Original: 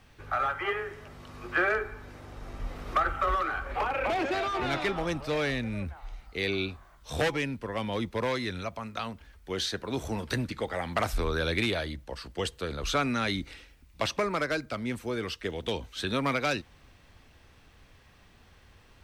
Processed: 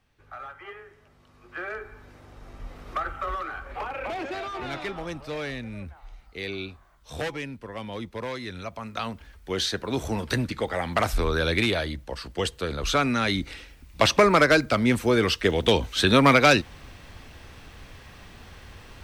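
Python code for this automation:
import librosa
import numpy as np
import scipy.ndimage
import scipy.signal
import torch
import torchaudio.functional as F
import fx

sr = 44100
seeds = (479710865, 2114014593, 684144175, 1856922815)

y = fx.gain(x, sr, db=fx.line((1.46, -11.5), (1.98, -3.5), (8.4, -3.5), (9.08, 4.5), (13.25, 4.5), (14.27, 11.5)))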